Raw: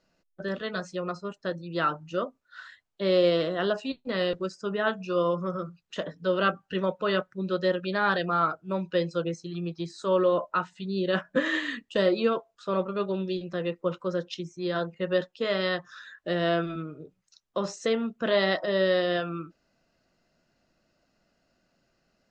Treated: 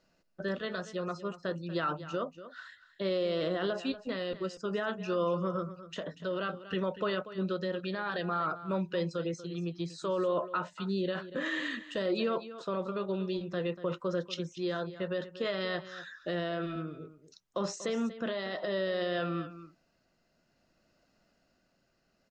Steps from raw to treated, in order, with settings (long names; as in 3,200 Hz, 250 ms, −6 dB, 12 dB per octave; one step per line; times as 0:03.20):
brickwall limiter −22.5 dBFS, peak gain reduction 11.5 dB
amplitude tremolo 0.57 Hz, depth 28%
single-tap delay 239 ms −14 dB